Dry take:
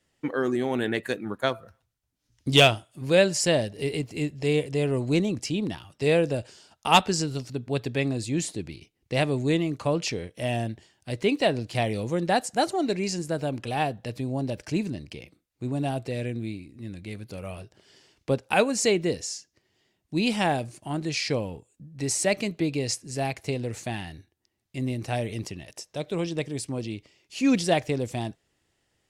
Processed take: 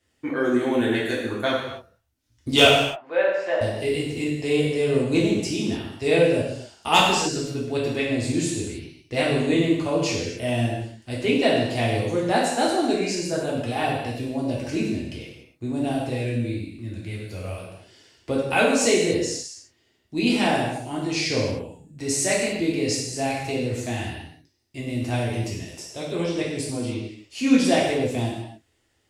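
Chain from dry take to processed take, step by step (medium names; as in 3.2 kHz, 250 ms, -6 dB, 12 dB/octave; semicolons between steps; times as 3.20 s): 2.65–3.61 s: Butterworth band-pass 1 kHz, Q 0.83; gated-style reverb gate 320 ms falling, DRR -5.5 dB; trim -2.5 dB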